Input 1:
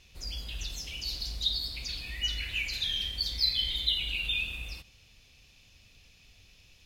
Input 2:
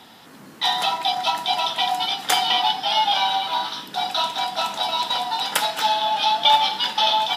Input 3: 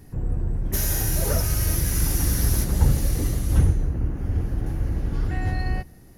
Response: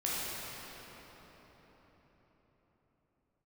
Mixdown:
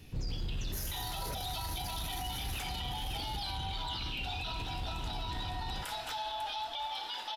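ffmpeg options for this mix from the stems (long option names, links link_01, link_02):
-filter_complex "[0:a]equalizer=frequency=12000:width=0.89:gain=-13,volume=-0.5dB,asplit=2[link_01][link_02];[link_02]volume=-13.5dB[link_03];[1:a]highpass=frequency=280:width=0.5412,highpass=frequency=280:width=1.3066,acompressor=threshold=-21dB:ratio=6,adelay=300,volume=-11dB,asplit=2[link_04][link_05];[link_05]volume=-17.5dB[link_06];[2:a]volume=-7dB[link_07];[link_01][link_07]amix=inputs=2:normalize=0,asoftclip=type=tanh:threshold=-20dB,alimiter=level_in=5dB:limit=-24dB:level=0:latency=1:release=11,volume=-5dB,volume=0dB[link_08];[link_03][link_06]amix=inputs=2:normalize=0,aecho=0:1:548|1096|1644|2192|2740|3288|3836:1|0.51|0.26|0.133|0.0677|0.0345|0.0176[link_09];[link_04][link_08][link_09]amix=inputs=3:normalize=0,alimiter=level_in=5.5dB:limit=-24dB:level=0:latency=1:release=28,volume=-5.5dB"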